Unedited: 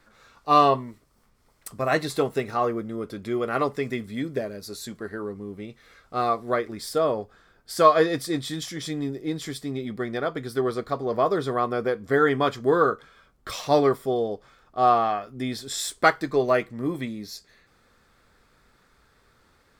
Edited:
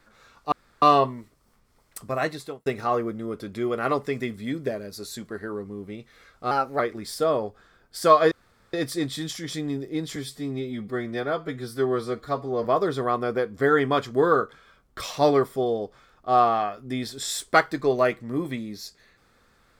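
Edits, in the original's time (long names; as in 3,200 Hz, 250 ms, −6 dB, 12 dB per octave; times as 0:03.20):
0:00.52: splice in room tone 0.30 s
0:01.73–0:02.36: fade out
0:06.21–0:06.54: play speed 116%
0:08.06: splice in room tone 0.42 s
0:09.48–0:11.14: time-stretch 1.5×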